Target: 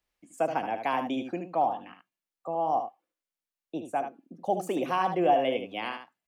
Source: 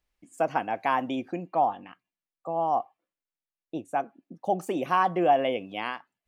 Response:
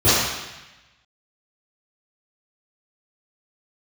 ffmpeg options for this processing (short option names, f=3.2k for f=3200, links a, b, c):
-filter_complex "[0:a]lowshelf=f=110:g=-9,acrossover=split=320|950|1800[a][b][c][d];[c]acompressor=threshold=-46dB:ratio=6[e];[a][b][e][d]amix=inputs=4:normalize=0,aecho=1:1:75:0.398"